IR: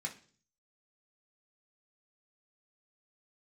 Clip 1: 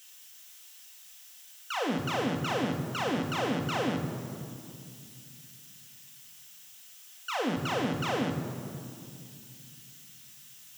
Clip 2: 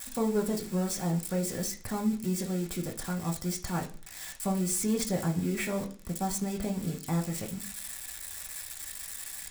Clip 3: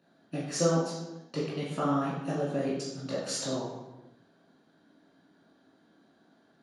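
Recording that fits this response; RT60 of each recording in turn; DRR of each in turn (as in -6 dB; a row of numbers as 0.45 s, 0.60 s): 2; 2.4 s, 0.45 s, no single decay rate; 1.5 dB, -1.5 dB, -8.5 dB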